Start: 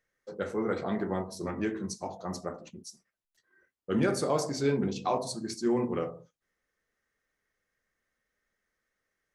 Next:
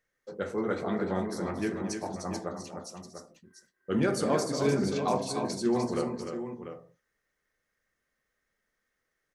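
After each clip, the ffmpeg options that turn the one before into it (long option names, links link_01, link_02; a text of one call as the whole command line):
ffmpeg -i in.wav -af "aecho=1:1:231|300|693:0.178|0.473|0.316" out.wav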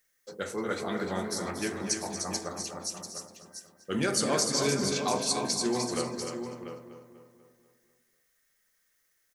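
ffmpeg -i in.wav -filter_complex "[0:a]acrossover=split=8400[link_01][link_02];[link_02]acompressor=threshold=-59dB:ratio=4:attack=1:release=60[link_03];[link_01][link_03]amix=inputs=2:normalize=0,asplit=2[link_04][link_05];[link_05]adelay=245,lowpass=frequency=3200:poles=1,volume=-9.5dB,asplit=2[link_06][link_07];[link_07]adelay=245,lowpass=frequency=3200:poles=1,volume=0.54,asplit=2[link_08][link_09];[link_09]adelay=245,lowpass=frequency=3200:poles=1,volume=0.54,asplit=2[link_10][link_11];[link_11]adelay=245,lowpass=frequency=3200:poles=1,volume=0.54,asplit=2[link_12][link_13];[link_13]adelay=245,lowpass=frequency=3200:poles=1,volume=0.54,asplit=2[link_14][link_15];[link_15]adelay=245,lowpass=frequency=3200:poles=1,volume=0.54[link_16];[link_04][link_06][link_08][link_10][link_12][link_14][link_16]amix=inputs=7:normalize=0,crystalizer=i=6.5:c=0,volume=-3.5dB" out.wav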